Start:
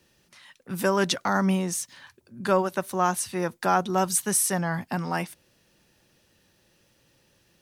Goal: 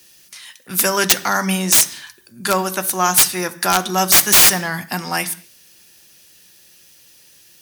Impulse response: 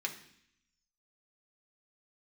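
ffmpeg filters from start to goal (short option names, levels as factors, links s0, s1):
-filter_complex "[0:a]crystalizer=i=6.5:c=0,aeval=exprs='(mod(2*val(0)+1,2)-1)/2':c=same,asplit=2[s0][s1];[1:a]atrim=start_sample=2205,afade=t=out:st=0.27:d=0.01,atrim=end_sample=12348,asetrate=41013,aresample=44100[s2];[s1][s2]afir=irnorm=-1:irlink=0,volume=0.562[s3];[s0][s3]amix=inputs=2:normalize=0,volume=0.891"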